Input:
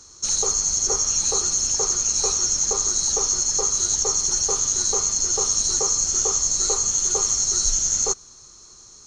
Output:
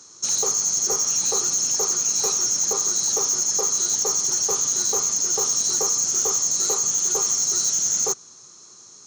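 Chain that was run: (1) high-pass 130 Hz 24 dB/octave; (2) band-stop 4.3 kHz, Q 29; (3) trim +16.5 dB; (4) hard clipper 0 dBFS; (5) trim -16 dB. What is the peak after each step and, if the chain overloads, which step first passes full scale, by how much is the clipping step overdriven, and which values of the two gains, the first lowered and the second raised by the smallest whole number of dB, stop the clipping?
-8.0 dBFS, -7.5 dBFS, +9.0 dBFS, 0.0 dBFS, -16.0 dBFS; step 3, 9.0 dB; step 3 +7.5 dB, step 5 -7 dB

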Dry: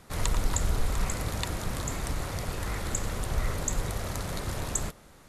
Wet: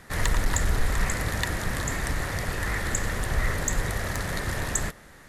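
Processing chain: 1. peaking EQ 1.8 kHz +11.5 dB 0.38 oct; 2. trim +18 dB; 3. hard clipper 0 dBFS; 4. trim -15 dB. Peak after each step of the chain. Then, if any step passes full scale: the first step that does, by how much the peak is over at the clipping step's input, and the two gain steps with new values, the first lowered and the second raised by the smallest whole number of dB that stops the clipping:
-11.5 dBFS, +6.5 dBFS, 0.0 dBFS, -15.0 dBFS; step 2, 6.5 dB; step 2 +11 dB, step 4 -8 dB

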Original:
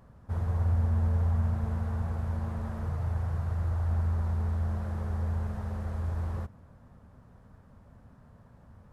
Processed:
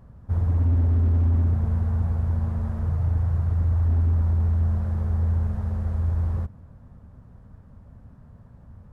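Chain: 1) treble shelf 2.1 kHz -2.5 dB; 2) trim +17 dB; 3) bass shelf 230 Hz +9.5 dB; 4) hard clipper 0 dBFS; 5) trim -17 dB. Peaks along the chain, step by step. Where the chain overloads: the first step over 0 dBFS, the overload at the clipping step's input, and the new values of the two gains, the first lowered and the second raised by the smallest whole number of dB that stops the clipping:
-18.5 dBFS, -1.5 dBFS, +6.5 dBFS, 0.0 dBFS, -17.0 dBFS; step 3, 6.5 dB; step 2 +10 dB, step 5 -10 dB

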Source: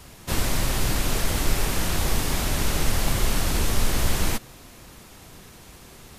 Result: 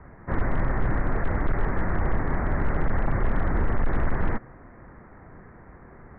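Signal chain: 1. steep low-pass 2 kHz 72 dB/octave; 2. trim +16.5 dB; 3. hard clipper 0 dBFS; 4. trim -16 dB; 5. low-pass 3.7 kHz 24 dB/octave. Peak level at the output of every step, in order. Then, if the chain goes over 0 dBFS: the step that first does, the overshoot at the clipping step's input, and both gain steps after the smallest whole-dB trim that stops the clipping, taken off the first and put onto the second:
-9.0 dBFS, +7.5 dBFS, 0.0 dBFS, -16.0 dBFS, -16.0 dBFS; step 2, 7.5 dB; step 2 +8.5 dB, step 4 -8 dB

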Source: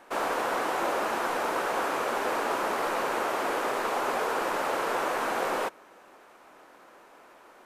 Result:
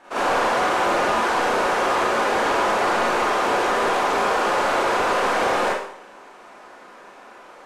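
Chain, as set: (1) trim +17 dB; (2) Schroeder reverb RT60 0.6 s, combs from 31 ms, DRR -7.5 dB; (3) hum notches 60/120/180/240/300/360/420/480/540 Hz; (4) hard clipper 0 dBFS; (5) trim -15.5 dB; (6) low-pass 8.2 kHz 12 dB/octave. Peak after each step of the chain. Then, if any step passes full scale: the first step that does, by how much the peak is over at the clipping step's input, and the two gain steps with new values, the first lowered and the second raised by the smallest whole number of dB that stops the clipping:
+1.0 dBFS, +9.5 dBFS, +9.0 dBFS, 0.0 dBFS, -15.5 dBFS, -15.0 dBFS; step 1, 9.0 dB; step 1 +8 dB, step 5 -6.5 dB

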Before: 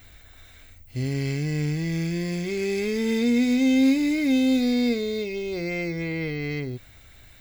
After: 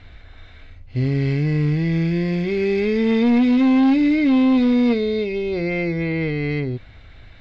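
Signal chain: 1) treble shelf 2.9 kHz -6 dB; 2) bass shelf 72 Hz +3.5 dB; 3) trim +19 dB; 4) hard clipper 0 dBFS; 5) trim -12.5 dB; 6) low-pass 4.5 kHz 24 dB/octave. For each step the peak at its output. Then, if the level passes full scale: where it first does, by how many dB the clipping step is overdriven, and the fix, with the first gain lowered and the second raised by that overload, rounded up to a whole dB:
-12.0 dBFS, -12.0 dBFS, +7.0 dBFS, 0.0 dBFS, -12.5 dBFS, -12.0 dBFS; step 3, 7.0 dB; step 3 +12 dB, step 5 -5.5 dB

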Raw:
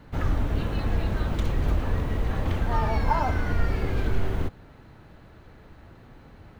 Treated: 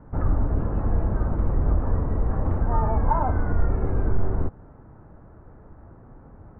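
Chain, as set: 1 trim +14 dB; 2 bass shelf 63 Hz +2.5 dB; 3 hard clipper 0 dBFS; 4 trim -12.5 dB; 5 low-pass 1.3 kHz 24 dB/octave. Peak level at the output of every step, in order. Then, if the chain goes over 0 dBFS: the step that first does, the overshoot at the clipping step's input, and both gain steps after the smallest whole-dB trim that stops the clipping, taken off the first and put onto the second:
+2.5 dBFS, +3.5 dBFS, 0.0 dBFS, -12.5 dBFS, -11.5 dBFS; step 1, 3.5 dB; step 1 +10 dB, step 4 -8.5 dB

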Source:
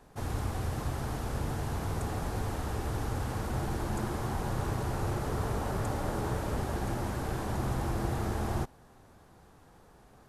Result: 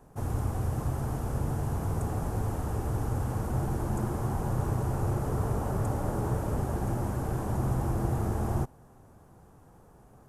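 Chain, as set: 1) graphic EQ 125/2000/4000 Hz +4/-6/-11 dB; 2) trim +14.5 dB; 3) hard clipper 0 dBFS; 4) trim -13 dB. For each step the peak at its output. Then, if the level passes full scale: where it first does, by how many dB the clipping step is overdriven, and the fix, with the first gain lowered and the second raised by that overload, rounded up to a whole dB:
-16.5 dBFS, -2.0 dBFS, -2.0 dBFS, -15.0 dBFS; nothing clips

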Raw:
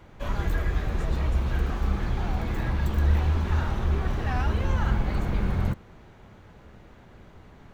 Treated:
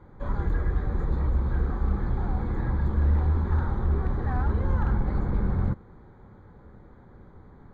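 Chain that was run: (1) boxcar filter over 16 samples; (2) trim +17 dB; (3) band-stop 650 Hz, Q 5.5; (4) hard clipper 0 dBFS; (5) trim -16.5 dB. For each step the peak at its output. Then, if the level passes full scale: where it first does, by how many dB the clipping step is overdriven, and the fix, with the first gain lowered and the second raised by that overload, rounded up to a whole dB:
-10.5 dBFS, +6.5 dBFS, +6.5 dBFS, 0.0 dBFS, -16.5 dBFS; step 2, 6.5 dB; step 2 +10 dB, step 5 -9.5 dB

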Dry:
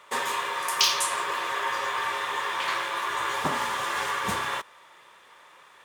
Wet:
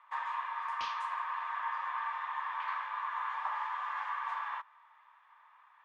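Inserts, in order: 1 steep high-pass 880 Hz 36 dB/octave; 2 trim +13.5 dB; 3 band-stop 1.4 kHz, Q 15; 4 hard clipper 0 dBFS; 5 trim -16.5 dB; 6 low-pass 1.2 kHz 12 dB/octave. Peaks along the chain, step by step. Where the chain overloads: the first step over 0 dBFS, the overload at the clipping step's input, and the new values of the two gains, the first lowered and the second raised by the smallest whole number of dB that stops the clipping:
-7.5 dBFS, +6.0 dBFS, +6.0 dBFS, 0.0 dBFS, -16.5 dBFS, -23.0 dBFS; step 2, 6.0 dB; step 2 +7.5 dB, step 5 -10.5 dB

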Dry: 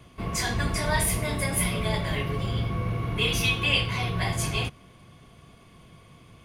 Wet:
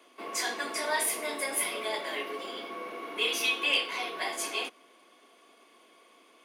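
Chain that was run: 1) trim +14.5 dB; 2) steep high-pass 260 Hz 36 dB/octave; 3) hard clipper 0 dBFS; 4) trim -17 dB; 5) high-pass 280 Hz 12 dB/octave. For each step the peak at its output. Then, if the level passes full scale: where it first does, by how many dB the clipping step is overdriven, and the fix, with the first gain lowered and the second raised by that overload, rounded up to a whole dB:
+5.0 dBFS, +3.5 dBFS, 0.0 dBFS, -17.0 dBFS, -16.0 dBFS; step 1, 3.5 dB; step 1 +10.5 dB, step 4 -13 dB

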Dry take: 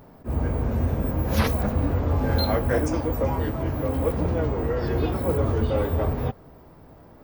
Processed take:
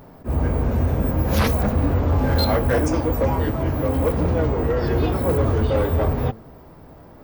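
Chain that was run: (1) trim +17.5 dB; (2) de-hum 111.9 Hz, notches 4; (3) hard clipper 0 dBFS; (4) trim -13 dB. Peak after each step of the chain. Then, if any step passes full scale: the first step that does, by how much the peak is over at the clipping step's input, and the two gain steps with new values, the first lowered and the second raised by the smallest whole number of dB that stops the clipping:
+9.0 dBFS, +9.0 dBFS, 0.0 dBFS, -13.0 dBFS; step 1, 9.0 dB; step 1 +8.5 dB, step 4 -4 dB

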